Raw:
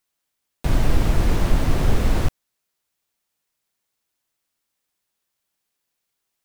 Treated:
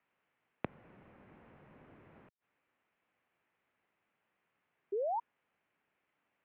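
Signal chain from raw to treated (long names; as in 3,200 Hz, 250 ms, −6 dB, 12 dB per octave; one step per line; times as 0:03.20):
gate with flip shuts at −18 dBFS, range −36 dB
single-sideband voice off tune −120 Hz 240–2,700 Hz
sound drawn into the spectrogram rise, 0:04.92–0:05.20, 380–980 Hz −39 dBFS
level +5 dB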